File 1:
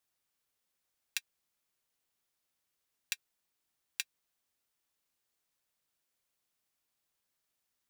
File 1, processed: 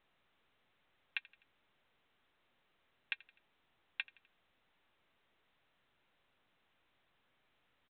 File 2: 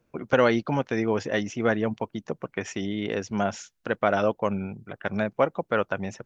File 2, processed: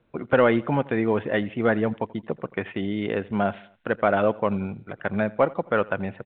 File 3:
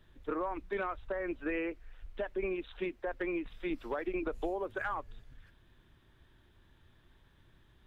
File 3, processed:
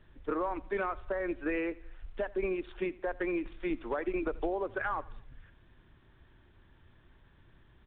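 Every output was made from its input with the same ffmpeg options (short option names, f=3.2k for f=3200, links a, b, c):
-af "lowpass=2.9k,acontrast=39,aecho=1:1:84|168|252:0.0794|0.0381|0.0183,volume=-3dB" -ar 8000 -c:a pcm_mulaw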